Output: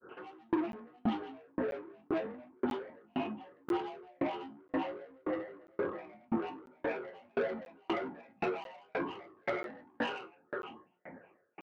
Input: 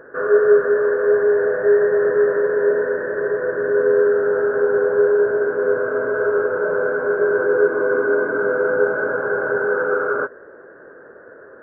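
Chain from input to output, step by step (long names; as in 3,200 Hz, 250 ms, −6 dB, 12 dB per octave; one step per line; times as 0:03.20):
single-tap delay 545 ms −10 dB
in parallel at +2 dB: downward compressor, threshold −28 dBFS, peak gain reduction 17.5 dB
on the sum: granular cloud 164 ms, grains 20 per second, pitch spread up and down by 12 semitones
low-shelf EQ 230 Hz +10 dB
soft clipping −14.5 dBFS, distortion −12 dB
high-pass filter 88 Hz
mains-hum notches 60/120/180/240/300/360/420/480/540 Hz
tuned comb filter 180 Hz, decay 0.31 s, harmonics all, mix 70%
regular buffer underruns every 0.99 s, samples 512, zero, from 0:00.72
tremolo with a ramp in dB decaying 1.9 Hz, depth 40 dB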